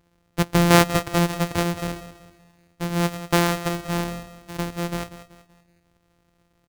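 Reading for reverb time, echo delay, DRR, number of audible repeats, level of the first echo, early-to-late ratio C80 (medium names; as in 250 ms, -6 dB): no reverb, 190 ms, no reverb, 3, -13.5 dB, no reverb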